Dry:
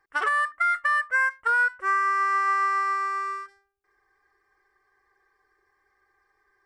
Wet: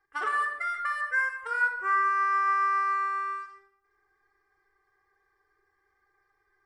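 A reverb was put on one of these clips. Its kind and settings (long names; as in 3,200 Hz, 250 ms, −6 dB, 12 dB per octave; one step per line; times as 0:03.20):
rectangular room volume 3,200 cubic metres, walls furnished, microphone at 3.8 metres
level −8 dB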